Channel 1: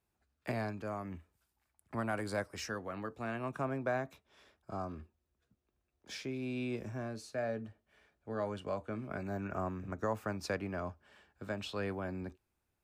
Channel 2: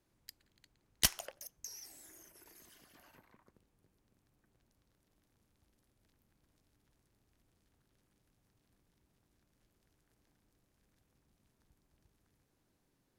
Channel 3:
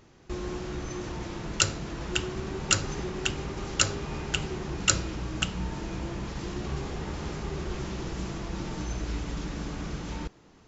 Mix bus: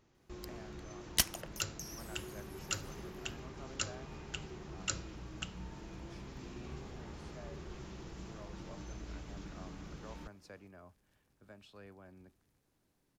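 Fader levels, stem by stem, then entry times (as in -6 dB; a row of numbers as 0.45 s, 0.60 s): -17.0 dB, 0.0 dB, -13.5 dB; 0.00 s, 0.15 s, 0.00 s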